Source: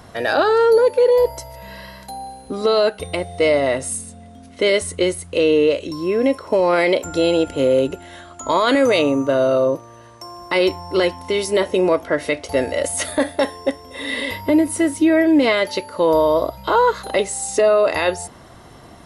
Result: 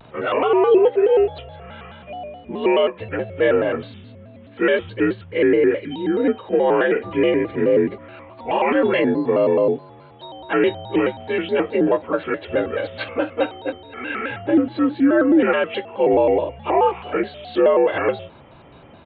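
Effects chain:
partials spread apart or drawn together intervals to 85%
downsampling to 8,000 Hz
pitch modulation by a square or saw wave square 4.7 Hz, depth 160 cents

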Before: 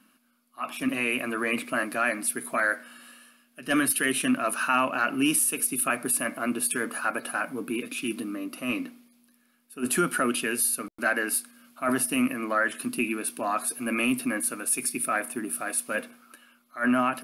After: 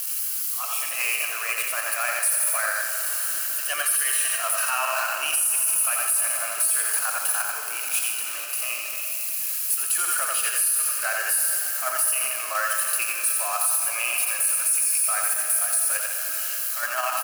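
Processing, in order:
spike at every zero crossing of −28.5 dBFS
inverse Chebyshev high-pass filter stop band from 200 Hz, stop band 60 dB
high-shelf EQ 2,600 Hz +8 dB
notch filter 3,600 Hz, Q 8.2
comb and all-pass reverb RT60 4 s, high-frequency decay 0.8×, pre-delay 25 ms, DRR 4.5 dB
in parallel at +0.5 dB: output level in coarse steps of 12 dB
on the sum: dynamic equaliser 1,800 Hz, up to −4 dB, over −31 dBFS, Q 0.96
on a send: loudspeakers that aren't time-aligned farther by 30 metres −5 dB, 51 metres −12 dB
on the sum: brickwall limiter −9 dBFS, peak gain reduction 9.5 dB
level −4 dB

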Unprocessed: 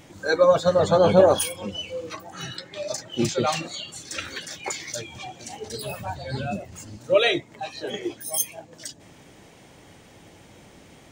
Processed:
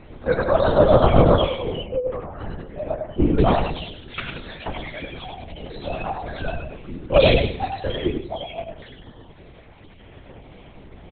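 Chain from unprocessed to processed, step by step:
time-frequency cells dropped at random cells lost 22%
repeating echo 94 ms, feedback 34%, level −4 dB
flanger 0.26 Hz, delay 2.6 ms, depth 1 ms, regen −49%
0:01.84–0:03.39: low-pass filter 1,200 Hz 12 dB per octave
on a send at −4 dB: convolution reverb RT60 0.20 s, pre-delay 3 ms
on the sum: pitch vibrato 8.3 Hz 48 cents
linear-prediction vocoder at 8 kHz whisper
level +6 dB

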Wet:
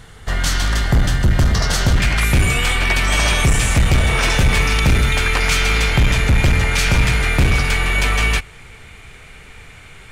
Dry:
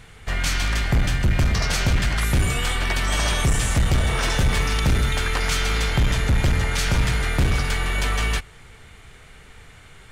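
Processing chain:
parametric band 2,400 Hz −10.5 dB 0.27 octaves, from 0:02.00 +7 dB
level +5 dB

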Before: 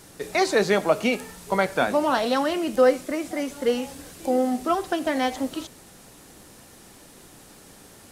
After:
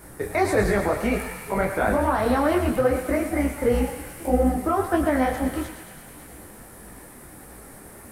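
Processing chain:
sub-octave generator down 2 octaves, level −3 dB
flat-topped bell 4,400 Hz −12.5 dB
brickwall limiter −17.5 dBFS, peak gain reduction 10 dB
on a send: feedback echo with a high-pass in the loop 111 ms, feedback 82%, high-pass 830 Hz, level −8 dB
on the sum: micro pitch shift up and down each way 55 cents
level +8.5 dB

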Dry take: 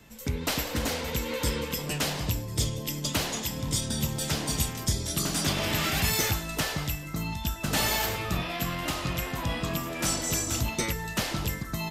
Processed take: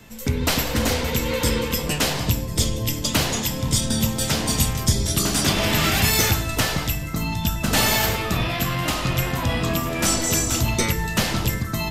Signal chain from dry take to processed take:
on a send: low-shelf EQ 320 Hz +9 dB + convolution reverb RT60 0.85 s, pre-delay 4 ms, DRR 12.5 dB
on the sum: level +7 dB

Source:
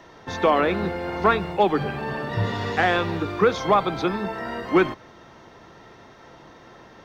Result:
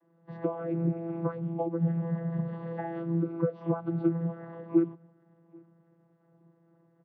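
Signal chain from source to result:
hearing-aid frequency compression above 3,300 Hz 1.5 to 1
downward compressor 16 to 1, threshold −21 dBFS, peak gain reduction 10 dB
single-tap delay 785 ms −19 dB
channel vocoder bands 16, saw 167 Hz
every bin expanded away from the loudest bin 1.5 to 1

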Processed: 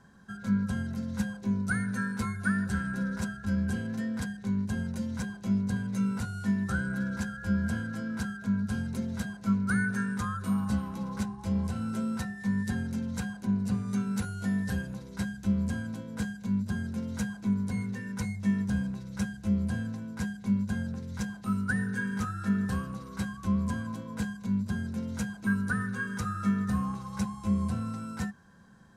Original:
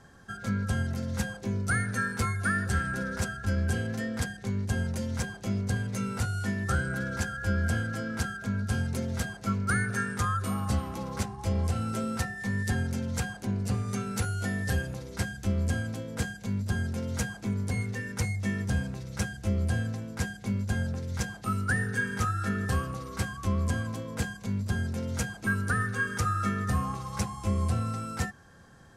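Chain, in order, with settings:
hollow resonant body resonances 200/1,000/1,500/3,900 Hz, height 13 dB, ringing for 70 ms
level −7 dB

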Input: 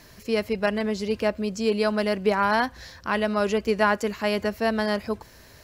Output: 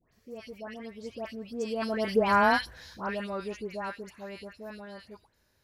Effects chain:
source passing by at 0:02.37, 17 m/s, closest 4.4 metres
all-pass dispersion highs, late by 126 ms, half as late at 1,700 Hz

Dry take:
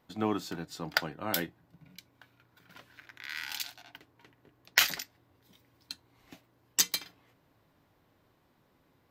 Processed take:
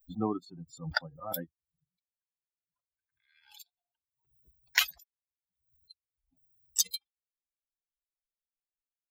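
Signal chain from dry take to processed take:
spectral dynamics exaggerated over time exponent 3
background raised ahead of every attack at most 110 dB per second
level +1.5 dB

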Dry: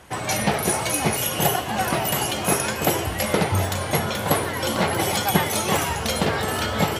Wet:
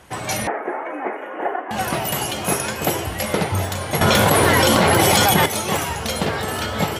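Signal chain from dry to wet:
0:00.47–0:01.71: elliptic band-pass filter 290–1,900 Hz, stop band 40 dB
0:04.01–0:05.46: envelope flattener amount 100%

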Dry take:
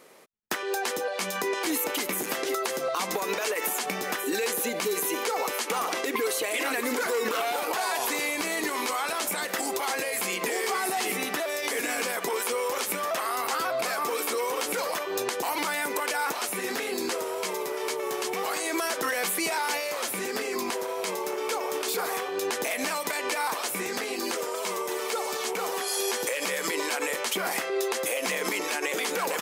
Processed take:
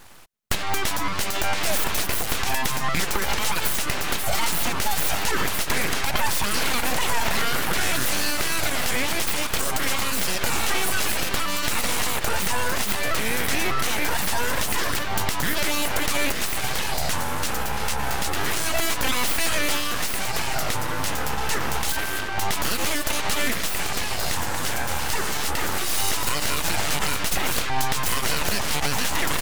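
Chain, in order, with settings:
0:21.92–0:22.38: ring modulation 780 Hz
full-wave rectification
level +8 dB

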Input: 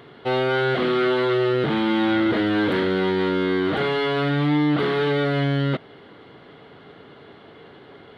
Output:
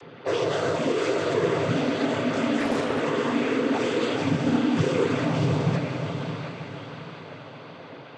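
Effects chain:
low-pass filter 3,600 Hz
mains-hum notches 50/100/150 Hz
phases set to zero 135 Hz
echo with a time of its own for lows and highs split 720 Hz, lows 124 ms, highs 711 ms, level −11.5 dB
in parallel at −9 dB: sine wavefolder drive 14 dB, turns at −8 dBFS
on the sum: cochlear-implant simulation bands 16
on a send: feedback delay with all-pass diffusion 559 ms, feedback 44%, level −7.5 dB
0:02.60–0:03.01: on the sum: highs frequency-modulated by the lows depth 0.49 ms
level −6.5 dB

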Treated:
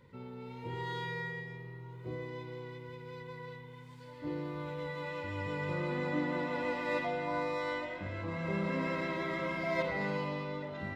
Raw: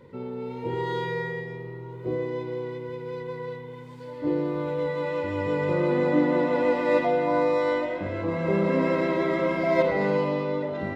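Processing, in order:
parametric band 420 Hz −10.5 dB 2.1 octaves
level −4 dB

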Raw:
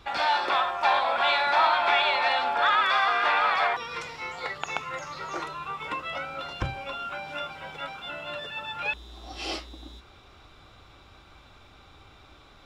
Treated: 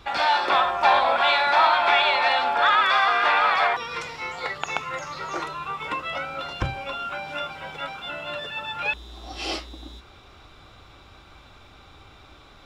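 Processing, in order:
0:00.50–0:01.17: low-shelf EQ 480 Hz +6 dB
level +3.5 dB

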